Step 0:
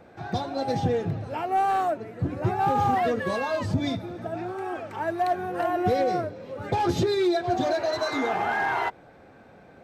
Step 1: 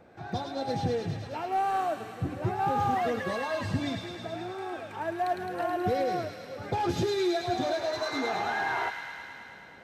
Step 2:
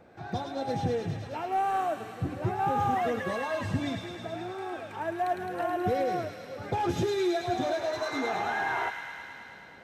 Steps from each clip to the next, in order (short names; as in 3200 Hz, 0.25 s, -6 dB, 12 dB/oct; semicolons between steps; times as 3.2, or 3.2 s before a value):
thin delay 0.107 s, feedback 80%, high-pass 1800 Hz, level -4 dB; gain -4.5 dB
dynamic EQ 4500 Hz, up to -7 dB, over -59 dBFS, Q 3.6